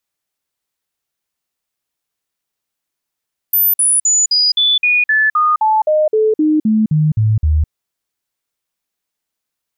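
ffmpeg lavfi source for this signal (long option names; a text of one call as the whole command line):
ffmpeg -f lavfi -i "aevalsrc='0.335*clip(min(mod(t,0.26),0.21-mod(t,0.26))/0.005,0,1)*sin(2*PI*13900*pow(2,-floor(t/0.26)/2)*mod(t,0.26))':duration=4.16:sample_rate=44100" out.wav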